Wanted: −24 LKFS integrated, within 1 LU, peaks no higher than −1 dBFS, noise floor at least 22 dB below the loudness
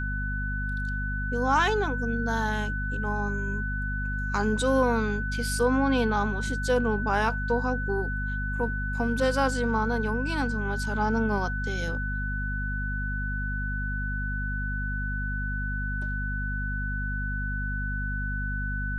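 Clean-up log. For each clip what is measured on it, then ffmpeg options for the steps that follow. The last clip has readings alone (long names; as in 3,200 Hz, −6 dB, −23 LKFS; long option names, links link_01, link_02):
mains hum 50 Hz; hum harmonics up to 250 Hz; level of the hum −28 dBFS; interfering tone 1,500 Hz; level of the tone −32 dBFS; integrated loudness −28.0 LKFS; sample peak −11.5 dBFS; target loudness −24.0 LKFS
→ -af "bandreject=frequency=50:width_type=h:width=4,bandreject=frequency=100:width_type=h:width=4,bandreject=frequency=150:width_type=h:width=4,bandreject=frequency=200:width_type=h:width=4,bandreject=frequency=250:width_type=h:width=4"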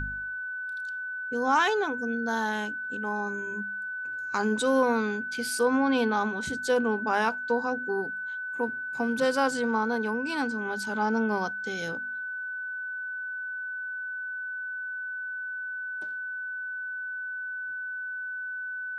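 mains hum none found; interfering tone 1,500 Hz; level of the tone −32 dBFS
→ -af "bandreject=frequency=1500:width=30"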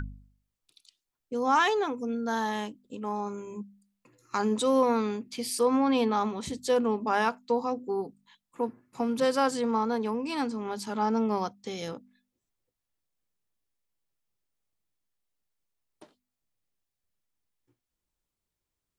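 interfering tone none found; integrated loudness −28.5 LKFS; sample peak −13.0 dBFS; target loudness −24.0 LKFS
→ -af "volume=4.5dB"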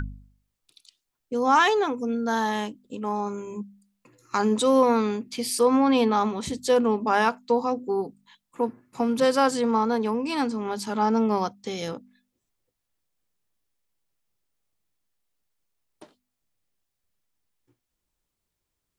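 integrated loudness −24.0 LKFS; sample peak −8.5 dBFS; background noise floor −82 dBFS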